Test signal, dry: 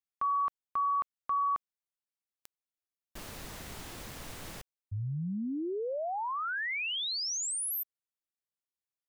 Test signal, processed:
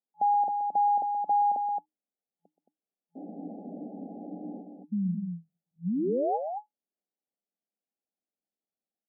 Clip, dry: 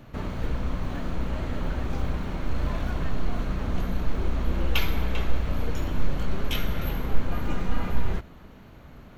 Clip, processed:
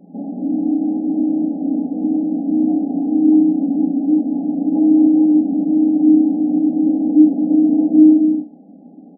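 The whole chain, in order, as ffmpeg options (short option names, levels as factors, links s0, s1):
-af "aecho=1:1:125.4|221.6:0.251|0.501,afreqshift=-310,afftfilt=real='re*between(b*sr/4096,170,850)':imag='im*between(b*sr/4096,170,850)':win_size=4096:overlap=0.75,volume=2"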